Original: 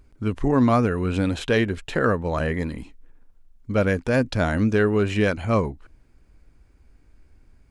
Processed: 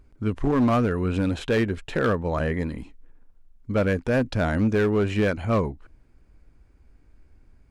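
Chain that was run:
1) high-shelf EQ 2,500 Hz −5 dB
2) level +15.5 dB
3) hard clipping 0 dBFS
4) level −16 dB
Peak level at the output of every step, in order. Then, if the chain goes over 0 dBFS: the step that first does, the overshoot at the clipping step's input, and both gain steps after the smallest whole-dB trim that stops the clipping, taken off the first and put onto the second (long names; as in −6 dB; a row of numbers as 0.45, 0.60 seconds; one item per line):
−7.5, +8.0, 0.0, −16.0 dBFS
step 2, 8.0 dB
step 2 +7.5 dB, step 4 −8 dB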